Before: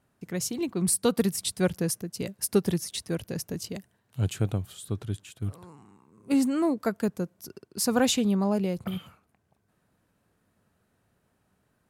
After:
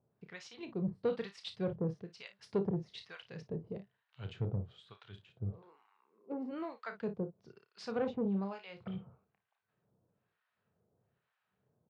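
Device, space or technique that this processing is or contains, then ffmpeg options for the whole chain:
guitar amplifier with harmonic tremolo: -filter_complex "[0:a]asettb=1/sr,asplit=3[a][b][c];[a]atrim=end=2.074[d];[b]atrim=start=2.07:end=3.27,asetpts=PTS-STARTPTS,afade=t=in:d=0.004:c=qsin,afade=t=out:st=1.196:d=0.004:c=qsin,highshelf=f=8.3k:g=6[e];[c]atrim=start=3.266[f];[d][e]acrossfade=d=0.004:c1=hsin:c2=qsin[g];[g][f]acrossfade=d=0.004:c1=qsin:c2=hsin,asplit=3[h][i][j];[h]afade=t=out:st=5.61:d=0.02[k];[i]highpass=f=280:w=0.5412,highpass=f=280:w=1.3066,afade=t=in:st=5.61:d=0.02,afade=t=out:st=6.51:d=0.02[l];[j]afade=t=in:st=6.51:d=0.02[m];[k][l][m]amix=inputs=3:normalize=0,aecho=1:1:31|56:0.335|0.2,acrossover=split=920[n][o];[n]aeval=exprs='val(0)*(1-1/2+1/2*cos(2*PI*1.1*n/s))':c=same[p];[o]aeval=exprs='val(0)*(1-1/2-1/2*cos(2*PI*1.1*n/s))':c=same[q];[p][q]amix=inputs=2:normalize=0,asoftclip=type=tanh:threshold=-21dB,highpass=90,equalizer=f=130:t=q:w=4:g=4,equalizer=f=280:t=q:w=4:g=-8,equalizer=f=450:t=q:w=4:g=5,lowpass=f=3.8k:w=0.5412,lowpass=f=3.8k:w=1.3066,volume=-5dB"

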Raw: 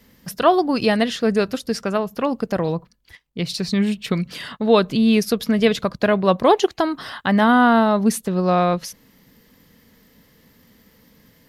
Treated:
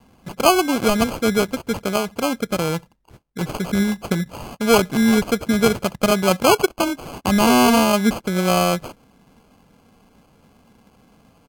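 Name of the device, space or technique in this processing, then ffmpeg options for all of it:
crushed at another speed: -af "asetrate=55125,aresample=44100,acrusher=samples=19:mix=1:aa=0.000001,asetrate=35280,aresample=44100"

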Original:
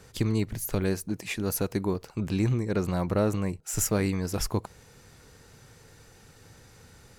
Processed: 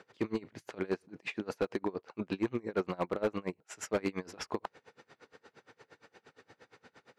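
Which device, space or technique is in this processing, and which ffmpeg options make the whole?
helicopter radio: -af "highpass=320,lowpass=2.9k,aeval=exprs='val(0)*pow(10,-28*(0.5-0.5*cos(2*PI*8.6*n/s))/20)':c=same,asoftclip=type=hard:threshold=-28dB,volume=5dB"

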